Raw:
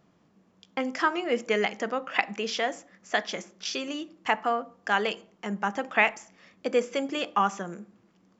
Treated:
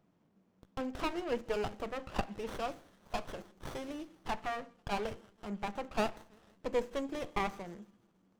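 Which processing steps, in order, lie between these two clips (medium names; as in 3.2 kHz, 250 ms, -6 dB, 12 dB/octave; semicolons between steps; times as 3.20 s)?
feedback echo behind a high-pass 163 ms, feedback 57%, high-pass 4.8 kHz, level -12 dB; sliding maximum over 17 samples; trim -7 dB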